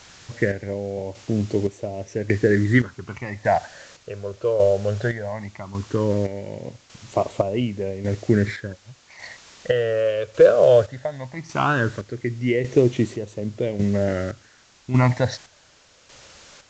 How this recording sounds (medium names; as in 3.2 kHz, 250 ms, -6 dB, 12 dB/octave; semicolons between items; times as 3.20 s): phasing stages 8, 0.17 Hz, lowest notch 250–1600 Hz; a quantiser's noise floor 8-bit, dither triangular; chopped level 0.87 Hz, depth 60%, duty 45%; µ-law